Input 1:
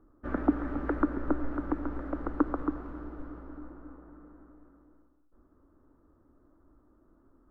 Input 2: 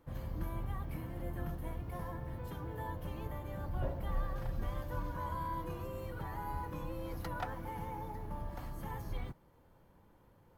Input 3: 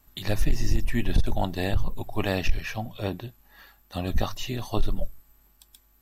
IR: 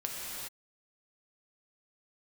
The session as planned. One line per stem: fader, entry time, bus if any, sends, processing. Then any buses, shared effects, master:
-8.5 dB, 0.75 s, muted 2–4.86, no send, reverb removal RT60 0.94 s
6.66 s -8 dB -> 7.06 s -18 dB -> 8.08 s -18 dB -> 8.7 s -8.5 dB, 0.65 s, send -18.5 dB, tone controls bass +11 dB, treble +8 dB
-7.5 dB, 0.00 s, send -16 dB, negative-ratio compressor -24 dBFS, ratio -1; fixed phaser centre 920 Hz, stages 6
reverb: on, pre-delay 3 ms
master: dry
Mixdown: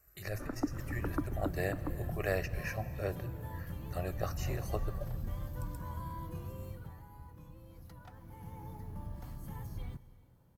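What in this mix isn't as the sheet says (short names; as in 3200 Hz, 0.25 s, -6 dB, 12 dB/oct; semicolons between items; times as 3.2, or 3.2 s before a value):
stem 1: entry 0.75 s -> 0.15 s; master: extra HPF 65 Hz 6 dB/oct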